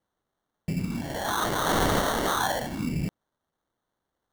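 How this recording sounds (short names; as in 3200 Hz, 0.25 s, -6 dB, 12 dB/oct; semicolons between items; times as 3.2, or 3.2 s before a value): phasing stages 12, 0.67 Hz, lowest notch 380–3900 Hz; aliases and images of a low sample rate 2500 Hz, jitter 0%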